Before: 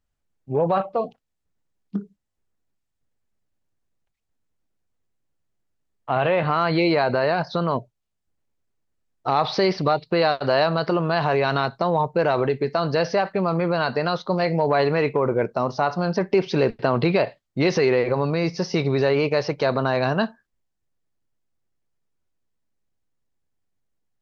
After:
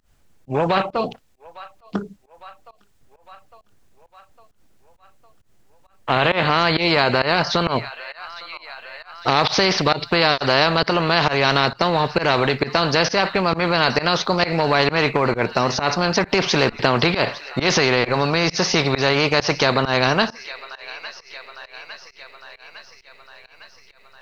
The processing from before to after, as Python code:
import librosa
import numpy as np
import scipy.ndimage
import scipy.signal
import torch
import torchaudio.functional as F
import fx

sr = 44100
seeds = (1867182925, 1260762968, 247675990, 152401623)

y = fx.echo_wet_highpass(x, sr, ms=856, feedback_pct=65, hz=1700.0, wet_db=-23.0)
y = fx.volume_shaper(y, sr, bpm=133, per_beat=1, depth_db=-23, release_ms=139.0, shape='fast start')
y = fx.spectral_comp(y, sr, ratio=2.0)
y = y * 10.0 ** (6.5 / 20.0)